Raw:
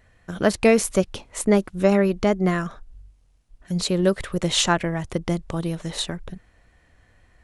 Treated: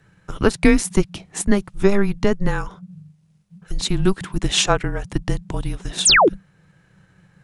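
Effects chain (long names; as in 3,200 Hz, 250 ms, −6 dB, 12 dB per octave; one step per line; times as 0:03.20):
frequency shifter −200 Hz
transient designer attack +2 dB, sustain −2 dB
sound drawn into the spectrogram fall, 0:06.05–0:06.29, 270–10,000 Hz −14 dBFS
level +2 dB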